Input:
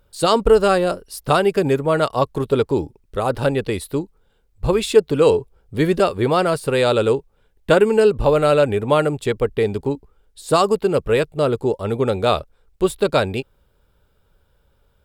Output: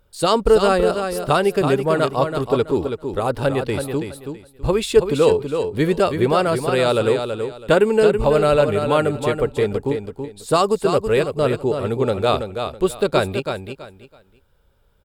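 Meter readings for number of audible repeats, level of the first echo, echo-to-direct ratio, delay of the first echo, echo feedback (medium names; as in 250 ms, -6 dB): 3, -7.0 dB, -6.5 dB, 328 ms, 24%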